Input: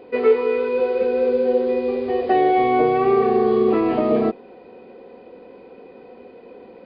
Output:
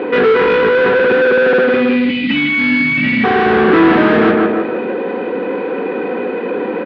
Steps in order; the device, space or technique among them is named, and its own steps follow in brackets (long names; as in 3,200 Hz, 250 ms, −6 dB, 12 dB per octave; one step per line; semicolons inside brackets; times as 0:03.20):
0:01.64–0:03.24: time-frequency box erased 290–1,900 Hz
0:02.90–0:03.71: comb filter 1.4 ms, depth 47%
repeating echo 156 ms, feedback 35%, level −10 dB
overdrive pedal into a guitar cabinet (mid-hump overdrive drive 35 dB, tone 2,100 Hz, clips at −5 dBFS; loudspeaker in its box 98–3,600 Hz, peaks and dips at 190 Hz +8 dB, 300 Hz +8 dB, 670 Hz −7 dB, 1,600 Hz +7 dB)